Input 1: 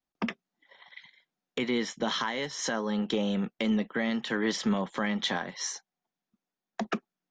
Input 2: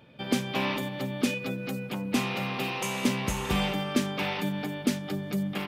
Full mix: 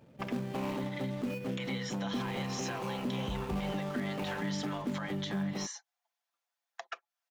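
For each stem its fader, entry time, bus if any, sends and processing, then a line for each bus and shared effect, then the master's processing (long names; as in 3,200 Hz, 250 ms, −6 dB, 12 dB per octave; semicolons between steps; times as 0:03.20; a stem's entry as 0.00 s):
+1.5 dB, 0.00 s, no send, inverse Chebyshev high-pass filter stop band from 190 Hz, stop band 60 dB; comb filter 5.9 ms, depth 56%; downward compressor 6 to 1, threshold −40 dBFS, peak gain reduction 14 dB
−2.0 dB, 0.00 s, no send, running median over 25 samples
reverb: not used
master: brickwall limiter −26 dBFS, peak gain reduction 10.5 dB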